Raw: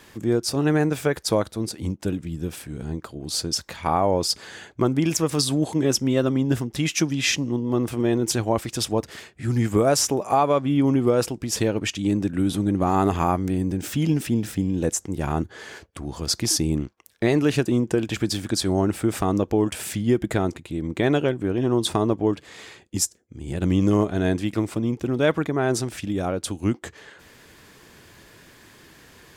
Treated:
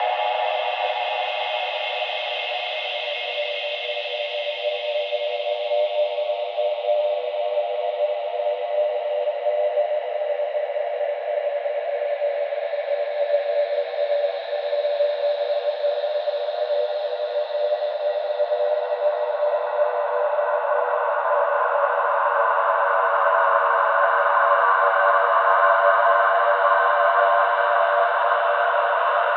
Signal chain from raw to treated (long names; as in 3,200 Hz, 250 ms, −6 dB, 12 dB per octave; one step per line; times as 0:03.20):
extreme stretch with random phases 21×, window 0.50 s, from 0:11.76
single-sideband voice off tune +290 Hz 290–3,300 Hz
level +4 dB